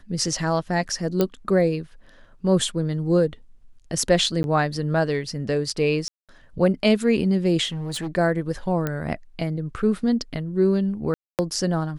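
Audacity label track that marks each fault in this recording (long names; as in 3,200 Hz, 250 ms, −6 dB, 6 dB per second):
1.210000	1.210000	click −8 dBFS
4.430000	4.440000	drop-out 11 ms
6.080000	6.290000	drop-out 207 ms
7.670000	8.080000	clipping −25 dBFS
8.870000	8.870000	click −12 dBFS
11.140000	11.390000	drop-out 248 ms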